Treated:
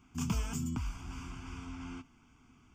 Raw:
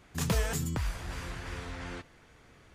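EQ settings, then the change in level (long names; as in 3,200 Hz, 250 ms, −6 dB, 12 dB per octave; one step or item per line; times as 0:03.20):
parametric band 250 Hz +12.5 dB 0.42 octaves
phaser with its sweep stopped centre 2,700 Hz, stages 8
−4.5 dB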